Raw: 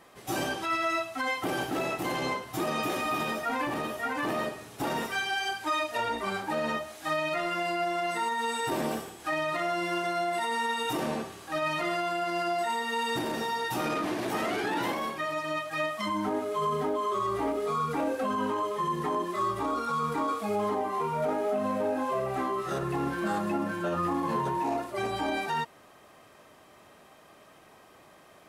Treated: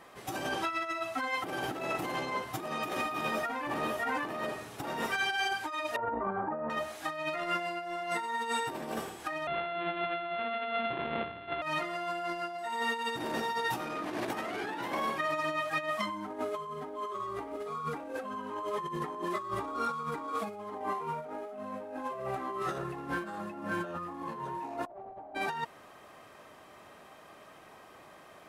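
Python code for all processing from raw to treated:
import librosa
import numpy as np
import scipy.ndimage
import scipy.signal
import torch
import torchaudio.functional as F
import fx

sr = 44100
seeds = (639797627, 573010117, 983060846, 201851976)

y = fx.chain(x, sr, fx.lowpass(hz=1300.0, slope=24),
    fx.over_compress(threshold_db=-33.0, ratio=-0.5), at=(5.96, 6.7))
y = fx.chain(y, sr, fx.sample_sort(block=64),
    fx.steep_lowpass(hz=3700.0, slope=72), at=(9.47, 11.62))
y = fx.chain(y, sr, fx.clip_1bit(),
    fx.lowpass_res(hz=710.0, q=5.5), at=(24.86, 25.35))
y = fx.high_shelf(y, sr, hz=2200.0, db=-9.5)
y = fx.over_compress(y, sr, threshold_db=-34.0, ratio=-0.5)
y = fx.tilt_shelf(y, sr, db=-4.0, hz=810.0)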